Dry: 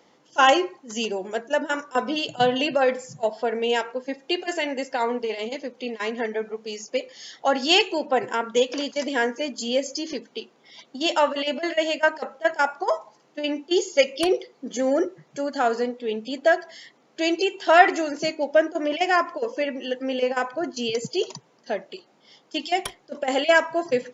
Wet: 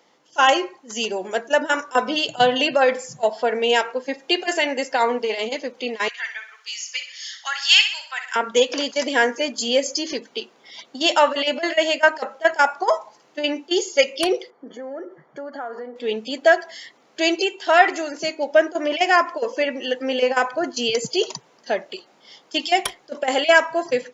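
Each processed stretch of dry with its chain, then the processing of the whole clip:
0:06.08–0:08.36: high-pass filter 1,400 Hz 24 dB per octave + repeating echo 62 ms, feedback 45%, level −9.5 dB
0:14.50–0:15.96: downward compressor 8 to 1, threshold −32 dBFS + Savitzky-Golay smoothing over 41 samples + low-shelf EQ 130 Hz −12 dB
whole clip: automatic gain control gain up to 6 dB; low-shelf EQ 360 Hz −8.5 dB; level +1 dB

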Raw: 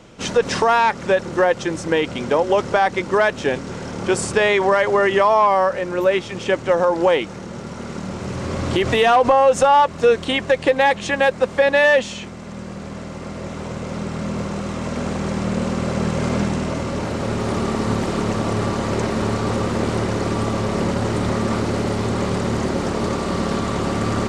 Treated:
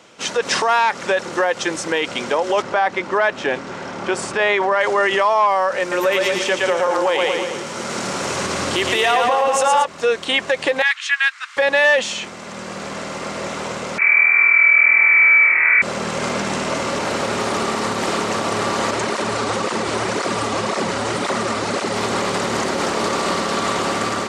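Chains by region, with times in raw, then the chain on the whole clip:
0:02.62–0:04.81: low-pass filter 2,100 Hz 6 dB per octave + notch filter 470 Hz, Q 8.7
0:05.80–0:09.85: high-shelf EQ 6,500 Hz +6.5 dB + echo with a time of its own for lows and highs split 410 Hz, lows 191 ms, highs 114 ms, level −3.5 dB
0:10.82–0:11.57: Butterworth high-pass 1,300 Hz + high-shelf EQ 4,900 Hz −10.5 dB
0:13.98–0:15.82: mains-hum notches 60/120/180/240/300/360/420 Hz + voice inversion scrambler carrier 2,500 Hz + flutter between parallel walls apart 4.4 metres, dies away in 1.5 s
0:18.91–0:21.96: bad sample-rate conversion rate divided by 2×, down none, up filtered + through-zero flanger with one copy inverted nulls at 1.9 Hz, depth 6.5 ms
whole clip: automatic gain control gain up to 8 dB; brickwall limiter −8 dBFS; high-pass filter 830 Hz 6 dB per octave; level +3 dB

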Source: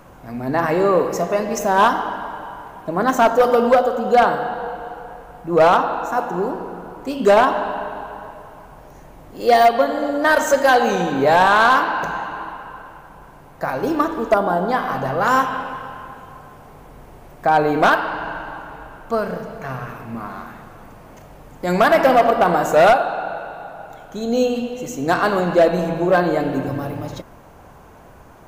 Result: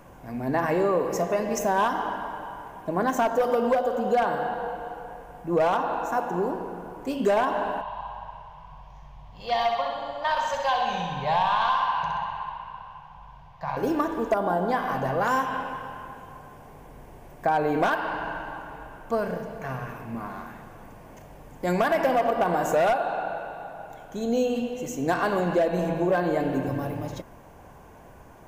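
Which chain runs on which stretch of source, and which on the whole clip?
0:07.81–0:13.77: drawn EQ curve 150 Hz 0 dB, 320 Hz −26 dB, 1,000 Hz +2 dB, 1,500 Hz −10 dB, 2,200 Hz −5 dB, 3,300 Hz +2 dB, 4,800 Hz −3 dB, 8,900 Hz −22 dB + flutter between parallel walls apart 11 metres, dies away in 0.78 s
whole clip: downward compressor, threshold −15 dBFS; parametric band 4,100 Hz −4.5 dB 0.39 octaves; notch filter 1,300 Hz, Q 7.8; level −4 dB

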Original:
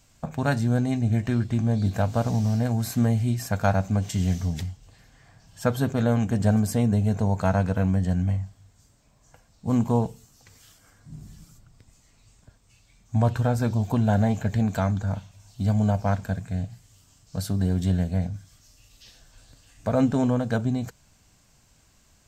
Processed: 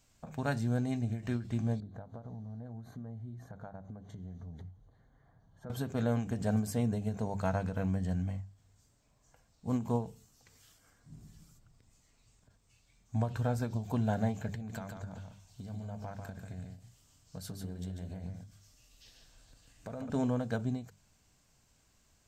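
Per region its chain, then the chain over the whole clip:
0:01.80–0:05.70: moving average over 17 samples + downward compressor 5 to 1, threshold −33 dBFS
0:14.55–0:20.10: downward compressor 8 to 1, threshold −29 dBFS + single-tap delay 144 ms −5 dB
whole clip: parametric band 430 Hz +2 dB 0.25 octaves; mains-hum notches 50/100/150/200 Hz; every ending faded ahead of time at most 150 dB per second; level −8.5 dB

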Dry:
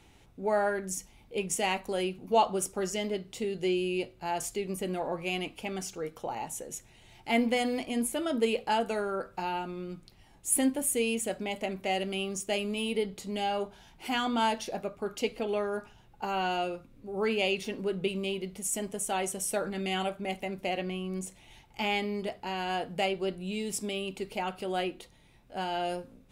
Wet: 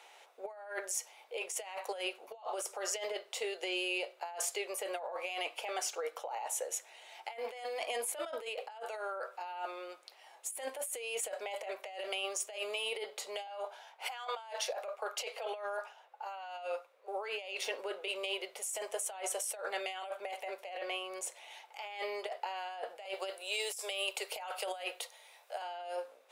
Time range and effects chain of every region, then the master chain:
0:13.47–0:17.08: high-pass filter 440 Hz 24 dB per octave + one half of a high-frequency compander decoder only
0:23.05–0:25.62: Butterworth high-pass 390 Hz + high-shelf EQ 5,200 Hz +10.5 dB
whole clip: Butterworth high-pass 530 Hz 36 dB per octave; spectral tilt −1.5 dB per octave; compressor whose output falls as the input rises −41 dBFS, ratio −1; level +1 dB

